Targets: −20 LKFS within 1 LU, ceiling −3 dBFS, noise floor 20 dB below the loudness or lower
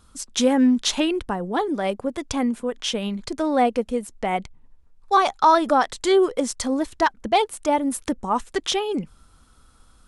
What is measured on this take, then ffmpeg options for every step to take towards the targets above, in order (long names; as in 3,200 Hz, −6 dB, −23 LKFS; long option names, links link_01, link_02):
integrated loudness −22.5 LKFS; sample peak −6.0 dBFS; target loudness −20.0 LKFS
→ -af "volume=2.5dB"